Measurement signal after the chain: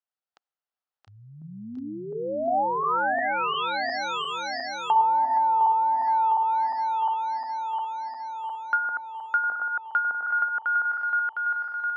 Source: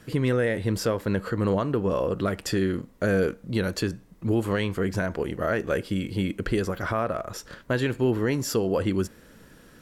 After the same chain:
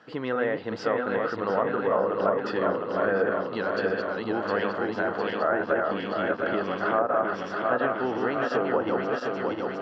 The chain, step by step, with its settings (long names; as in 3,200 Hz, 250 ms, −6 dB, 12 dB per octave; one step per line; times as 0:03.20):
feedback delay that plays each chunk backwards 354 ms, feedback 80%, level −3 dB
loudspeaker in its box 350–4,300 Hz, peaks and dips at 370 Hz −5 dB, 780 Hz +7 dB, 1,300 Hz +5 dB, 2,300 Hz −8 dB, 3,700 Hz −5 dB
treble cut that deepens with the level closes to 880 Hz, closed at −17 dBFS